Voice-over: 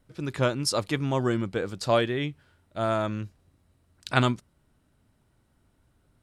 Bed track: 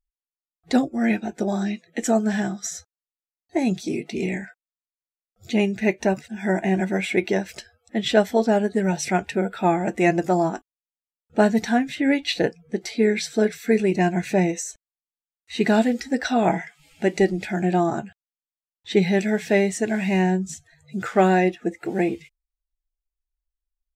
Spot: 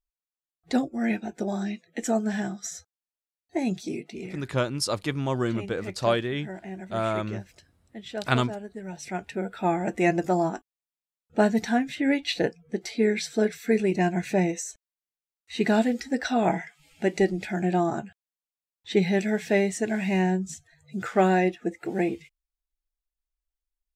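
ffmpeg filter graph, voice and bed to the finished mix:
ffmpeg -i stem1.wav -i stem2.wav -filter_complex "[0:a]adelay=4150,volume=-1dB[link_01];[1:a]volume=8dB,afade=type=out:start_time=3.86:duration=0.51:silence=0.266073,afade=type=in:start_time=8.84:duration=1.04:silence=0.223872[link_02];[link_01][link_02]amix=inputs=2:normalize=0" out.wav

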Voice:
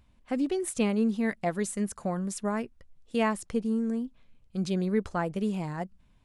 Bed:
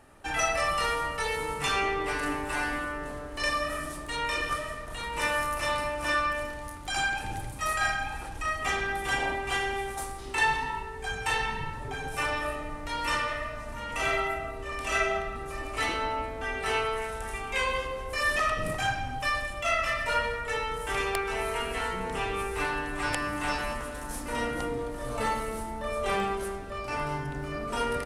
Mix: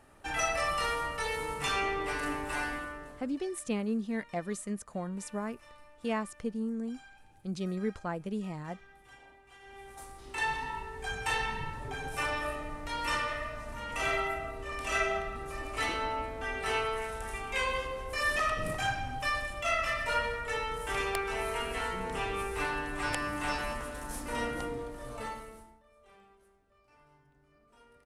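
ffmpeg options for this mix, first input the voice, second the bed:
ffmpeg -i stem1.wav -i stem2.wav -filter_complex "[0:a]adelay=2900,volume=-6dB[link_01];[1:a]volume=20.5dB,afade=type=out:start_time=2.58:duration=0.85:silence=0.0668344,afade=type=in:start_time=9.59:duration=1.39:silence=0.0630957,afade=type=out:start_time=24.43:duration=1.4:silence=0.0375837[link_02];[link_01][link_02]amix=inputs=2:normalize=0" out.wav

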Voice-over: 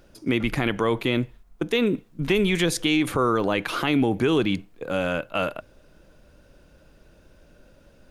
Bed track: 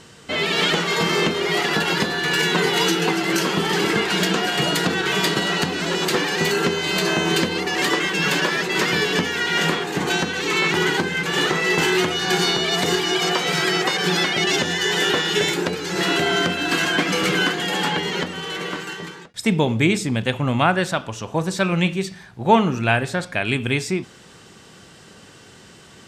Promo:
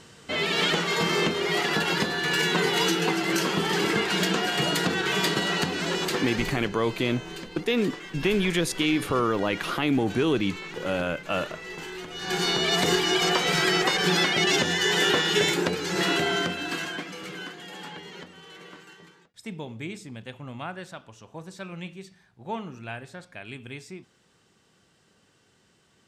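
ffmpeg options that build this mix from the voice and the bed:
ffmpeg -i stem1.wav -i stem2.wav -filter_complex "[0:a]adelay=5950,volume=-2.5dB[link_01];[1:a]volume=12dB,afade=type=out:start_time=5.89:duration=0.77:silence=0.188365,afade=type=in:start_time=12.07:duration=0.61:silence=0.149624,afade=type=out:start_time=15.85:duration=1.27:silence=0.16788[link_02];[link_01][link_02]amix=inputs=2:normalize=0" out.wav

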